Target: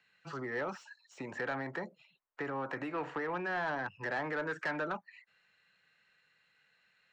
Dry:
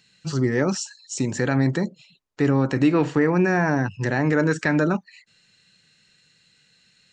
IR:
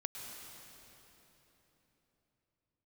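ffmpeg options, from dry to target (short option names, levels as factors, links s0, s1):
-filter_complex "[0:a]acrossover=split=610|1500[s0][s1][s2];[s2]volume=26.6,asoftclip=hard,volume=0.0376[s3];[s0][s1][s3]amix=inputs=3:normalize=0,acrossover=split=140|4900[s4][s5][s6];[s4]acompressor=threshold=0.0112:ratio=4[s7];[s5]acompressor=threshold=0.0794:ratio=4[s8];[s6]acompressor=threshold=0.00794:ratio=4[s9];[s7][s8][s9]amix=inputs=3:normalize=0,acrossover=split=570 2300:gain=0.126 1 0.0708[s10][s11][s12];[s10][s11][s12]amix=inputs=3:normalize=0,asoftclip=type=tanh:threshold=0.0501,volume=0.841"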